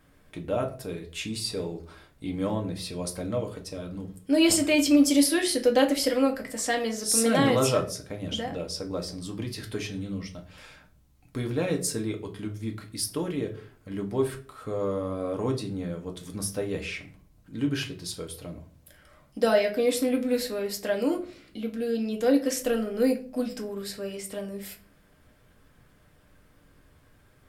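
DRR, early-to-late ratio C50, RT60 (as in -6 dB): 2.0 dB, 13.0 dB, 0.45 s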